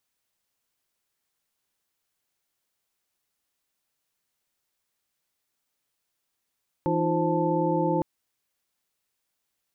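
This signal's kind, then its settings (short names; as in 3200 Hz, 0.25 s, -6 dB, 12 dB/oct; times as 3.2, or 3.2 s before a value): chord E3/D#4/F4/C5/A5 sine, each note -28 dBFS 1.16 s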